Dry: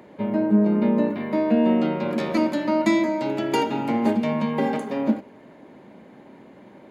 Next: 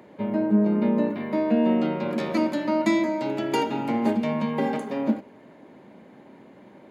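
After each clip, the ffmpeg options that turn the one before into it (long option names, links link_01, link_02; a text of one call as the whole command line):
ffmpeg -i in.wav -af "highpass=58,volume=-2dB" out.wav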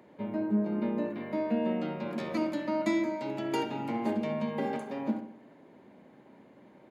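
ffmpeg -i in.wav -filter_complex "[0:a]asplit=2[link_01][link_02];[link_02]adelay=66,lowpass=frequency=1700:poles=1,volume=-7.5dB,asplit=2[link_03][link_04];[link_04]adelay=66,lowpass=frequency=1700:poles=1,volume=0.52,asplit=2[link_05][link_06];[link_06]adelay=66,lowpass=frequency=1700:poles=1,volume=0.52,asplit=2[link_07][link_08];[link_08]adelay=66,lowpass=frequency=1700:poles=1,volume=0.52,asplit=2[link_09][link_10];[link_10]adelay=66,lowpass=frequency=1700:poles=1,volume=0.52,asplit=2[link_11][link_12];[link_12]adelay=66,lowpass=frequency=1700:poles=1,volume=0.52[link_13];[link_01][link_03][link_05][link_07][link_09][link_11][link_13]amix=inputs=7:normalize=0,volume=-7.5dB" out.wav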